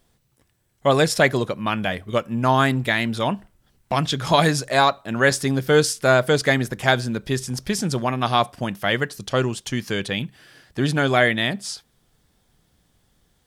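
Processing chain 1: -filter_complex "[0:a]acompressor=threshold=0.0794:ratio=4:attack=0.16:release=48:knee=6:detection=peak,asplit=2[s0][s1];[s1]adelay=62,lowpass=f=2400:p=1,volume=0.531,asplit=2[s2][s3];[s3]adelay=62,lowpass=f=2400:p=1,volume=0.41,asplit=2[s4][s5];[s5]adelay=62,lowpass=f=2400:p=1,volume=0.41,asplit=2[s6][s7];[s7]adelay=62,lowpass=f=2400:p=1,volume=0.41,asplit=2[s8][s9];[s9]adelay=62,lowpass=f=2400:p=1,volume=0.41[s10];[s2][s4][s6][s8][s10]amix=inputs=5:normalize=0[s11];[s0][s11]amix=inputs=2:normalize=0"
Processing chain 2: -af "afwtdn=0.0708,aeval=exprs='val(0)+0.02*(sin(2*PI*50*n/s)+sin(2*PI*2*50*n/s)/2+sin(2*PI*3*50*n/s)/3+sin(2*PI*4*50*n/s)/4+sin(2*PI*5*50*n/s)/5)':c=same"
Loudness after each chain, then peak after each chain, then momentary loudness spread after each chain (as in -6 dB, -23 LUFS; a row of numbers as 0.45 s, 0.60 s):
-27.5 LUFS, -22.0 LUFS; -14.5 dBFS, -3.0 dBFS; 5 LU, 20 LU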